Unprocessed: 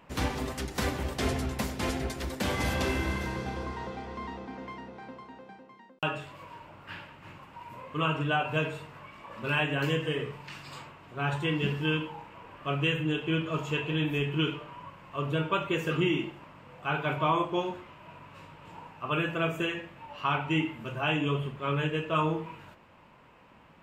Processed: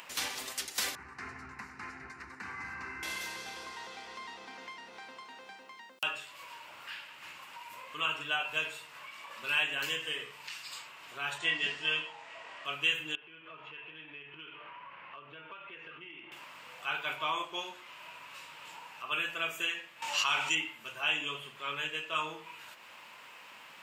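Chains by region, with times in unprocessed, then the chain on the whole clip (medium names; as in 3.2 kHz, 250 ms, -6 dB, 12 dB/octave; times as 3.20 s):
0.95–3.03 s: low-pass 1.9 kHz + peaking EQ 91 Hz +5.5 dB 1.1 oct + static phaser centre 1.4 kHz, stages 4
11.38–12.65 s: low-pass 8.1 kHz 24 dB/octave + doubling 24 ms -5.5 dB + small resonant body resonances 660/1900 Hz, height 12 dB
13.15–16.32 s: low-pass 2.6 kHz 24 dB/octave + compression, threshold -43 dBFS
20.02–20.55 s: peaking EQ 6.7 kHz +14.5 dB 1.1 oct + level flattener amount 70%
whole clip: high-pass 1.4 kHz 6 dB/octave; treble shelf 2.2 kHz +12 dB; upward compressor, threshold -36 dBFS; trim -4.5 dB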